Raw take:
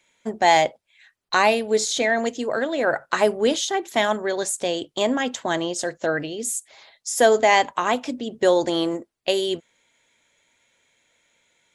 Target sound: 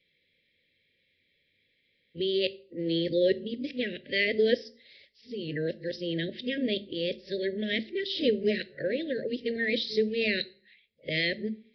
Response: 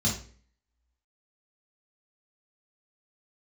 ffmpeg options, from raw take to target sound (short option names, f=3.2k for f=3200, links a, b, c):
-filter_complex "[0:a]areverse,asplit=2[a][b];[1:a]atrim=start_sample=2205[c];[b][c]afir=irnorm=-1:irlink=0,volume=-23dB[d];[a][d]amix=inputs=2:normalize=0,aresample=11025,aresample=44100,asuperstop=centerf=990:order=12:qfactor=0.8,volume=-4.5dB"